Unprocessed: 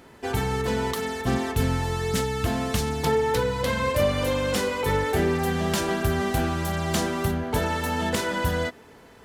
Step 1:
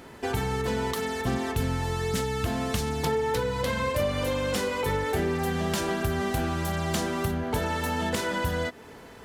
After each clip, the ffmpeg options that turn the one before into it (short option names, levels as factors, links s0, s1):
-af "acompressor=threshold=0.0224:ratio=2,volume=1.5"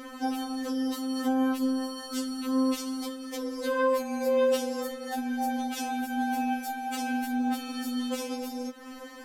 -af "alimiter=level_in=1.12:limit=0.0631:level=0:latency=1:release=228,volume=0.891,afftfilt=real='re*3.46*eq(mod(b,12),0)':imag='im*3.46*eq(mod(b,12),0)':win_size=2048:overlap=0.75,volume=2"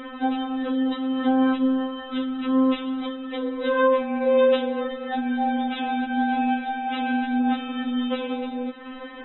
-af "volume=2" -ar 22050 -c:a aac -b:a 16k